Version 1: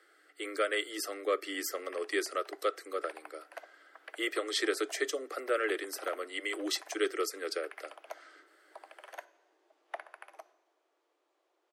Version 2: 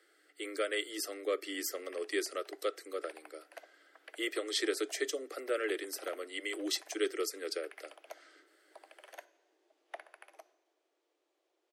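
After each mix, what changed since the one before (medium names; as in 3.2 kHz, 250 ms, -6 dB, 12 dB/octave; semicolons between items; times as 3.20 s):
master: add peaking EQ 1.1 kHz -8 dB 1.5 oct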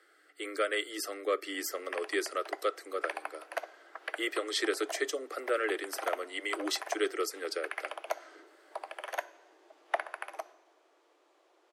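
background +10.0 dB; master: add peaking EQ 1.1 kHz +8 dB 1.5 oct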